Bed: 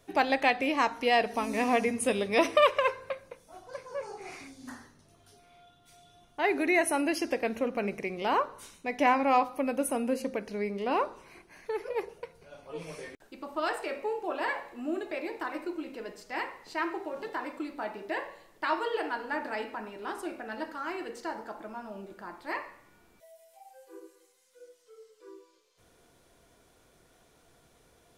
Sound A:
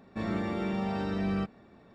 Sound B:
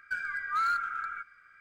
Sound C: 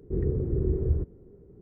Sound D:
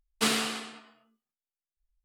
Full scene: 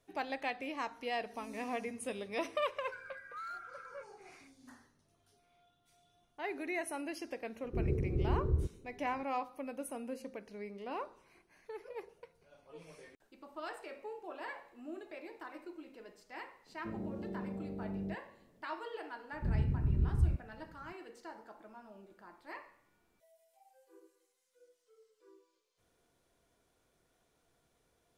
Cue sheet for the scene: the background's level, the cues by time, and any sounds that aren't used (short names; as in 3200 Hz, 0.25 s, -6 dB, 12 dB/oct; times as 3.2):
bed -12.5 dB
2.81 add B -16 dB
7.63 add C -6 dB
16.69 add A -9.5 dB + steep low-pass 630 Hz
19.32 add C -3.5 dB + band shelf 530 Hz -16 dB
not used: D